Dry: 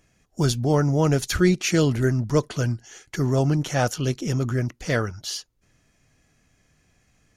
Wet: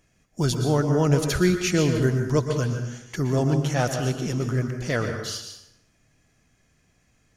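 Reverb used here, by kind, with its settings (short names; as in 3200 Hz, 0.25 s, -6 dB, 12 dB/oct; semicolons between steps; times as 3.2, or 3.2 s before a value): plate-style reverb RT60 0.88 s, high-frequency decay 0.7×, pre-delay 0.105 s, DRR 5.5 dB; gain -2 dB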